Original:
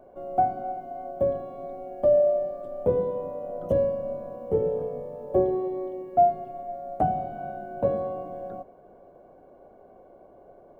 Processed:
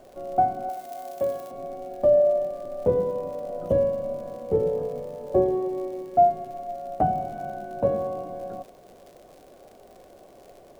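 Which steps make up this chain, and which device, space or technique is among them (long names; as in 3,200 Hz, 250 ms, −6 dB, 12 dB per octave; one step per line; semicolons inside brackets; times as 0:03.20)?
vinyl LP (surface crackle 93 per second −42 dBFS; pink noise bed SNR 37 dB)
0:00.69–0:01.51: spectral tilt +3.5 dB per octave
level +1.5 dB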